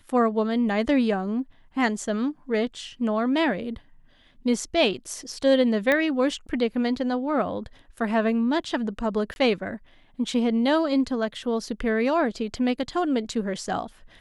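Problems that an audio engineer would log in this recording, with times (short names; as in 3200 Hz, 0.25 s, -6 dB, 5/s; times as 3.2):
5.92 pop -10 dBFS
9.34–9.36 gap 21 ms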